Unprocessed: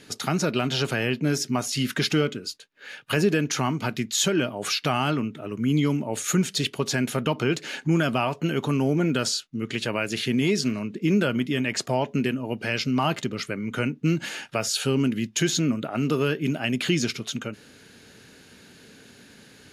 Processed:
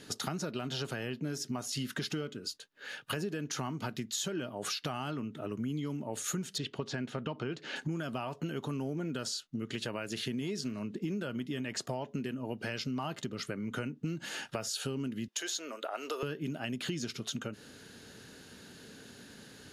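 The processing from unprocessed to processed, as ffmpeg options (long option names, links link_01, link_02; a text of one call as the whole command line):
ffmpeg -i in.wav -filter_complex "[0:a]asettb=1/sr,asplit=3[link_01][link_02][link_03];[link_01]atrim=end=6.584[link_04];[link_02]atrim=start=6.58:end=7.76,asetpts=PTS-STARTPTS,afade=type=in:duration=0.004:curve=qsin,afade=type=out:start_time=1.176:duration=0.004:curve=qsin,lowpass=4100[link_05];[link_03]atrim=start=7.756[link_06];[link_04][link_05]acrossfade=duration=0.004:curve1=hsin:curve2=qsin[link_07];[link_07][link_06]acrossfade=duration=0.004:curve1=qsin:curve2=hsin,asettb=1/sr,asplit=3[link_08][link_09][link_10];[link_08]atrim=end=15.284[link_11];[link_09]atrim=start=15.28:end=16.23,asetpts=PTS-STARTPTS,afade=type=in:duration=0.004:curve=qsin,afade=type=out:start_time=0.946:duration=0.004:curve=qsin,highpass=frequency=470:width=0.5412,highpass=frequency=470:width=1.3066[link_12];[link_10]atrim=start=16.226[link_13];[link_11][link_12]acrossfade=duration=0.004:curve1=hsin:curve2=qsin[link_14];[link_14][link_13]acrossfade=duration=0.004:curve1=qsin:curve2=hsin,equalizer=frequency=2300:width_type=o:width=0.35:gain=-6.5,acompressor=threshold=-32dB:ratio=6,volume=-1.5dB" out.wav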